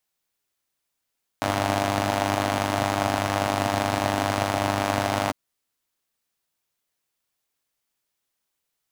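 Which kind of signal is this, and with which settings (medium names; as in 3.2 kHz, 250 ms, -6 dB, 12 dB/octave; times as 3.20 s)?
four-cylinder engine model, steady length 3.90 s, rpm 3000, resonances 120/260/650 Hz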